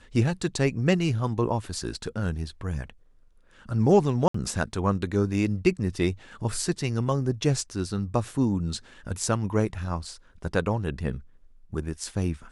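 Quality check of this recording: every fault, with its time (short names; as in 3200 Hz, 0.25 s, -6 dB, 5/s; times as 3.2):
4.28–4.34 gap 64 ms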